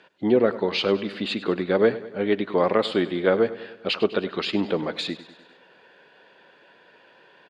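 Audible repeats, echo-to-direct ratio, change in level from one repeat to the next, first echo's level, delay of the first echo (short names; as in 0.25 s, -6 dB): 4, -14.5 dB, -5.0 dB, -16.0 dB, 0.1 s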